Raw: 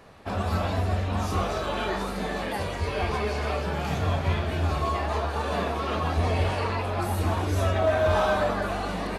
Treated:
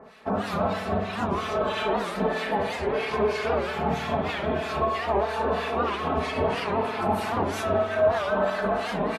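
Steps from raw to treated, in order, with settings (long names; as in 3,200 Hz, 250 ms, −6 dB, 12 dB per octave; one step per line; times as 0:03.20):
high-pass filter 230 Hz 6 dB per octave
high-shelf EQ 4,100 Hz −8.5 dB
comb filter 4.6 ms, depth 61%
brickwall limiter −20 dBFS, peak gain reduction 8.5 dB
two-band tremolo in antiphase 3.1 Hz, depth 100%, crossover 1,300 Hz
spring reverb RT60 2.2 s, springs 52 ms, chirp 45 ms, DRR 6 dB
wow of a warped record 78 rpm, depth 160 cents
level +7 dB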